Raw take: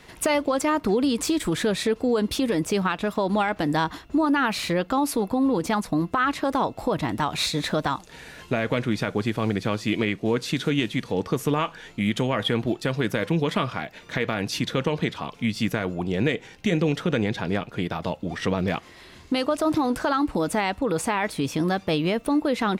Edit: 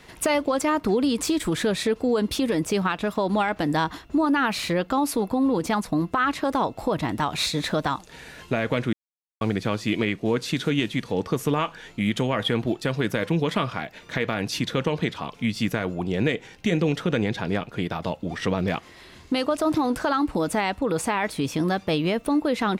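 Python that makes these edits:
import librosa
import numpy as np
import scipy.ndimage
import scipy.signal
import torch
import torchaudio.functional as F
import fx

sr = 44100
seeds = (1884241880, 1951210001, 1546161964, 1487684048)

y = fx.edit(x, sr, fx.silence(start_s=8.93, length_s=0.48), tone=tone)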